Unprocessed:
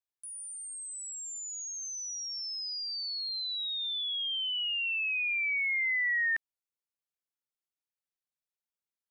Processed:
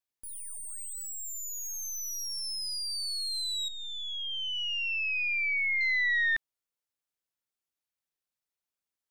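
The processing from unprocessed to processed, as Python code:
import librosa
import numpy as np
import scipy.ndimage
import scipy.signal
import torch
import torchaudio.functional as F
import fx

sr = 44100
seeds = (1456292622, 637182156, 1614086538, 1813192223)

y = fx.tracing_dist(x, sr, depth_ms=0.023)
y = fx.savgol(y, sr, points=25, at=(3.68, 5.81))
y = y * 10.0 ** (2.0 / 20.0)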